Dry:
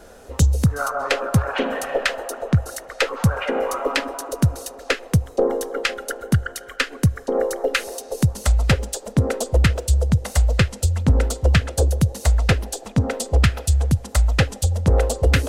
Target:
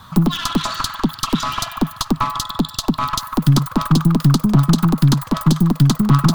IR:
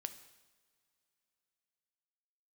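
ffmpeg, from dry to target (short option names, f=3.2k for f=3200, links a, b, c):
-af "aeval=exprs='clip(val(0),-1,0.0531)':c=same,asetrate=107604,aresample=44100,equalizer=f=125:t=o:w=1:g=9,equalizer=f=250:t=o:w=1:g=7,equalizer=f=500:t=o:w=1:g=-11,equalizer=f=1k:t=o:w=1:g=9,equalizer=f=2k:t=o:w=1:g=-8,equalizer=f=4k:t=o:w=1:g=6"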